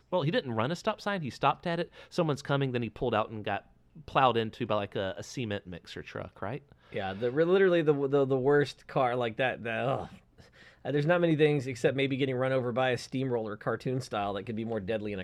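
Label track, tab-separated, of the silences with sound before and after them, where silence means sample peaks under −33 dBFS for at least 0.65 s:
10.050000	10.850000	silence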